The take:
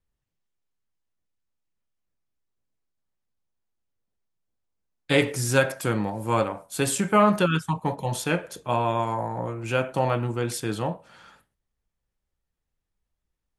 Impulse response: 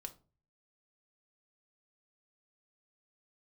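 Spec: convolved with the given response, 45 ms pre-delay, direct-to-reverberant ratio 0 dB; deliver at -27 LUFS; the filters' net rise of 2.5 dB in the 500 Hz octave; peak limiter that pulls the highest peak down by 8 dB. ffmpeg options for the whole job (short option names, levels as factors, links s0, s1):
-filter_complex "[0:a]equalizer=f=500:t=o:g=3,alimiter=limit=0.237:level=0:latency=1,asplit=2[s0][s1];[1:a]atrim=start_sample=2205,adelay=45[s2];[s1][s2]afir=irnorm=-1:irlink=0,volume=1.68[s3];[s0][s3]amix=inputs=2:normalize=0,volume=0.596"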